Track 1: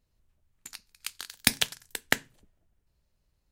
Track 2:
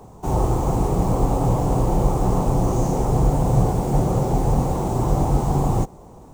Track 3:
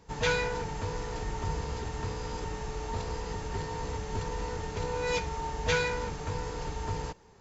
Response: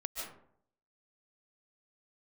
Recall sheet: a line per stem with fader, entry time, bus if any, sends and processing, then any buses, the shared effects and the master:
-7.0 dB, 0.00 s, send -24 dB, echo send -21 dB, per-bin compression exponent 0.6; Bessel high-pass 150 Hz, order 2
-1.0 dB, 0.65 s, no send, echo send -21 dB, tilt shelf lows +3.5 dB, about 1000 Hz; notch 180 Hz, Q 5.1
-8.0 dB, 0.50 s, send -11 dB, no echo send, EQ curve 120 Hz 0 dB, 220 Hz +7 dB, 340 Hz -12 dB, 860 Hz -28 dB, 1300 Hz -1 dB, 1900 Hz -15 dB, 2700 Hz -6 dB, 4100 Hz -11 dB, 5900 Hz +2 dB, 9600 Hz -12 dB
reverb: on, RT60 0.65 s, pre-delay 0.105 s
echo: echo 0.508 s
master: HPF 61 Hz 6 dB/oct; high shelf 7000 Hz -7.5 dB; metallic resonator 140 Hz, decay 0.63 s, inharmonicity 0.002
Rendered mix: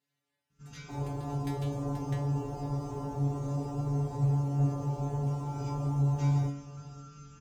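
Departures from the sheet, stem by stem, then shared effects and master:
stem 1 -7.0 dB -> -13.0 dB; stem 3 -8.0 dB -> +0.5 dB; reverb return +9.5 dB

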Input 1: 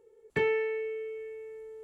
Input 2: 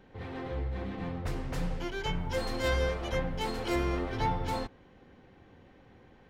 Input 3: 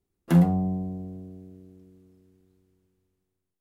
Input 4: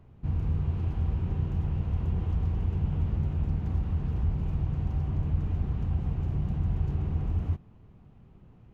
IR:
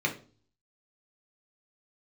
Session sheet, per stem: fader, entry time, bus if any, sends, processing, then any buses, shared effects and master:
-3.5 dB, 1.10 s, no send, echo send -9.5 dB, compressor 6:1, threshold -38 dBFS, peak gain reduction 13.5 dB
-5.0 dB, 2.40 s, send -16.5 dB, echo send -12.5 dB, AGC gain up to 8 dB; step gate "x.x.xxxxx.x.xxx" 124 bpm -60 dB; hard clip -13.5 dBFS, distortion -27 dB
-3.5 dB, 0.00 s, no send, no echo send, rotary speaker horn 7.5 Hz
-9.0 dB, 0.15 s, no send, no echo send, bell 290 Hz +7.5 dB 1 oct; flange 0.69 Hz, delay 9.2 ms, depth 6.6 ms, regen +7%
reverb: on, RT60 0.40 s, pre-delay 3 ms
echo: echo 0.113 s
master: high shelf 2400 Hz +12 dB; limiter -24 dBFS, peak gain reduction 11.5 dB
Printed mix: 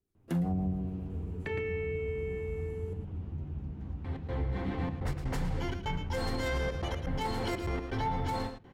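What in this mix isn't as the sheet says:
stem 1 -3.5 dB -> +4.5 dB; stem 2: entry 2.40 s -> 3.80 s; master: missing high shelf 2400 Hz +12 dB

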